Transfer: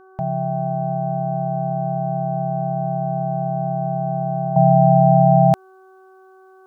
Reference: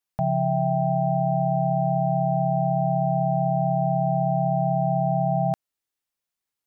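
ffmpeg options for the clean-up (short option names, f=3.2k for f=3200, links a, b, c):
-af "bandreject=f=378.2:t=h:w=4,bandreject=f=756.4:t=h:w=4,bandreject=f=1.1346k:t=h:w=4,bandreject=f=1.5128k:t=h:w=4,asetnsamples=n=441:p=0,asendcmd='4.56 volume volume -10dB',volume=0dB"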